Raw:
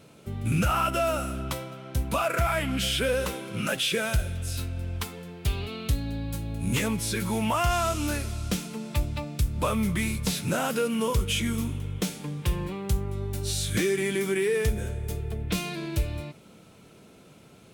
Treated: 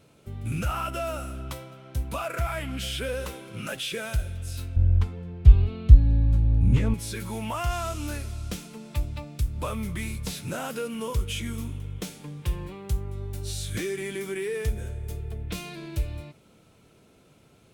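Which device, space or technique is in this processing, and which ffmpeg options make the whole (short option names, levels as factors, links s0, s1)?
low shelf boost with a cut just above: -filter_complex "[0:a]lowshelf=f=95:g=7,equalizer=f=190:t=o:w=0.5:g=-4,asettb=1/sr,asplit=3[s0][s1][s2];[s0]atrim=end=4.764[s3];[s1]atrim=start=4.76:end=6.94,asetpts=PTS-STARTPTS,afade=t=in:d=0.004:c=qsin,afade=t=out:st=2.176:d=0.004:c=qsin,aemphasis=mode=reproduction:type=riaa[s4];[s2]atrim=start=6.936[s5];[s3][s4]acrossfade=d=0.004:c1=hsin:c2=qsin[s6];[s6][s5]acrossfade=d=0.004:c1=qsin:c2=hsin,volume=0.531"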